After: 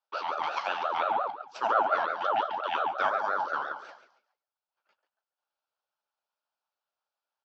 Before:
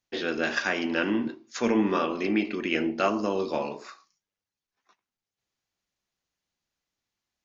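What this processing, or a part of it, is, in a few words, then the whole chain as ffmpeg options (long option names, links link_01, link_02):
voice changer toy: -filter_complex "[0:a]asplit=4[link_01][link_02][link_03][link_04];[link_02]adelay=139,afreqshift=34,volume=-12dB[link_05];[link_03]adelay=278,afreqshift=68,volume=-22.2dB[link_06];[link_04]adelay=417,afreqshift=102,volume=-32.3dB[link_07];[link_01][link_05][link_06][link_07]amix=inputs=4:normalize=0,aeval=exprs='val(0)*sin(2*PI*720*n/s+720*0.4/5.7*sin(2*PI*5.7*n/s))':channel_layout=same,highpass=550,equalizer=frequency=590:width_type=q:width=4:gain=7,equalizer=frequency=860:width_type=q:width=4:gain=8,equalizer=frequency=1400:width_type=q:width=4:gain=10,equalizer=frequency=2000:width_type=q:width=4:gain=-10,equalizer=frequency=3700:width_type=q:width=4:gain=-3,lowpass=frequency=4900:width=0.5412,lowpass=frequency=4900:width=1.3066,volume=-3dB"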